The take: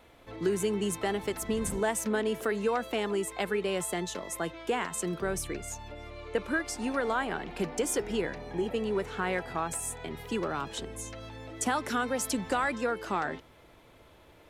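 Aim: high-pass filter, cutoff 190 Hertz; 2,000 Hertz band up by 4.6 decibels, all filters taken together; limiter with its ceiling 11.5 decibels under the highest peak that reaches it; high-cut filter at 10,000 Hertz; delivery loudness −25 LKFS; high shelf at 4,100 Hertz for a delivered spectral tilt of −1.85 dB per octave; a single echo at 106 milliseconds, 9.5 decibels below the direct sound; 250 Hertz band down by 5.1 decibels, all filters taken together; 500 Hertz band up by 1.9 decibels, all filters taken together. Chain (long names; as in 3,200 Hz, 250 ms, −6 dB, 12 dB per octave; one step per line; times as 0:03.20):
high-pass filter 190 Hz
low-pass filter 10,000 Hz
parametric band 250 Hz −7 dB
parametric band 500 Hz +4.5 dB
parametric band 2,000 Hz +4 dB
high-shelf EQ 4,100 Hz +9 dB
brickwall limiter −24 dBFS
single-tap delay 106 ms −9.5 dB
level +8.5 dB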